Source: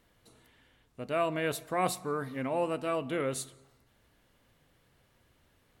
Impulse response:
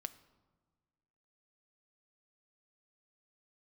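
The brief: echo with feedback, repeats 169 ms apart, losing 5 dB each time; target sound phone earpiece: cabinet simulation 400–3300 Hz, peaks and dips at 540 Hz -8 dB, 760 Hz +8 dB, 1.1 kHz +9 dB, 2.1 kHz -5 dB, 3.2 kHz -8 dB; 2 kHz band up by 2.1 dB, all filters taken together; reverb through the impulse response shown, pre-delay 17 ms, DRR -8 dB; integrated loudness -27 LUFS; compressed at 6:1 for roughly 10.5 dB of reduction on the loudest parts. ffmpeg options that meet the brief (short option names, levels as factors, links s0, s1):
-filter_complex "[0:a]equalizer=f=2000:t=o:g=5,acompressor=threshold=0.0178:ratio=6,aecho=1:1:169|338|507|676|845|1014|1183:0.562|0.315|0.176|0.0988|0.0553|0.031|0.0173,asplit=2[s0][s1];[1:a]atrim=start_sample=2205,adelay=17[s2];[s1][s2]afir=irnorm=-1:irlink=0,volume=3.55[s3];[s0][s3]amix=inputs=2:normalize=0,highpass=400,equalizer=f=540:t=q:w=4:g=-8,equalizer=f=760:t=q:w=4:g=8,equalizer=f=1100:t=q:w=4:g=9,equalizer=f=2100:t=q:w=4:g=-5,equalizer=f=3200:t=q:w=4:g=-8,lowpass=f=3300:w=0.5412,lowpass=f=3300:w=1.3066,volume=1.26"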